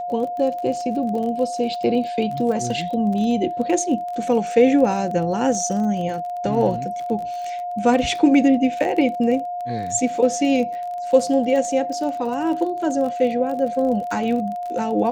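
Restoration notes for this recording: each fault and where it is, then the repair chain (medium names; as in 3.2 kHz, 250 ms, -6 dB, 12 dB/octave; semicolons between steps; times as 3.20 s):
crackle 29 per s -28 dBFS
whine 710 Hz -25 dBFS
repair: de-click; band-stop 710 Hz, Q 30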